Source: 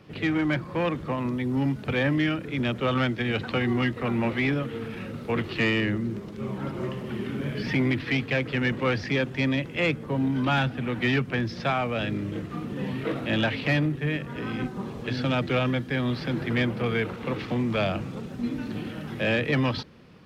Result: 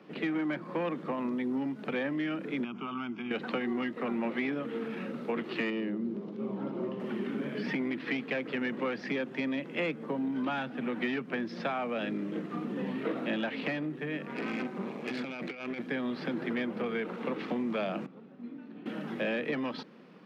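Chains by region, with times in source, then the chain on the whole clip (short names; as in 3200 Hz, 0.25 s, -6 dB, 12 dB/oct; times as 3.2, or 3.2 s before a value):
2.64–3.31 compressor 2.5:1, threshold -29 dBFS + air absorption 100 m + fixed phaser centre 2700 Hz, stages 8
5.7–7 LPF 3900 Hz + bell 1800 Hz -9 dB 1.4 oct
14.26–15.86 bell 2300 Hz +11.5 dB 0.33 oct + negative-ratio compressor -27 dBFS, ratio -0.5 + tube stage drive 26 dB, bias 0.75
18.06–18.86 air absorption 180 m + resonator 140 Hz, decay 2 s, mix 80%
whole clip: high shelf 3800 Hz -12 dB; compressor, threshold -28 dBFS; steep high-pass 180 Hz 36 dB/oct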